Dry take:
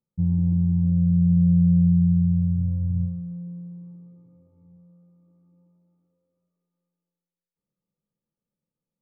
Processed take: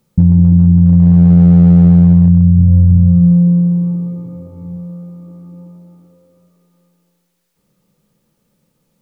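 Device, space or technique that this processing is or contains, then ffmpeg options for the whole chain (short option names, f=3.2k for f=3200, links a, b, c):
loud club master: -af "acompressor=threshold=-25dB:ratio=1.5,asoftclip=type=hard:threshold=-17.5dB,alimiter=level_in=27dB:limit=-1dB:release=50:level=0:latency=1,volume=-1dB"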